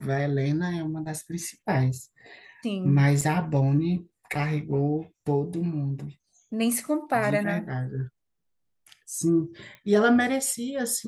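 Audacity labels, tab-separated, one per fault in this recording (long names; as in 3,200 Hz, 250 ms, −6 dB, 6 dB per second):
3.210000	3.220000	drop-out 5.3 ms
9.750000	9.750000	click −30 dBFS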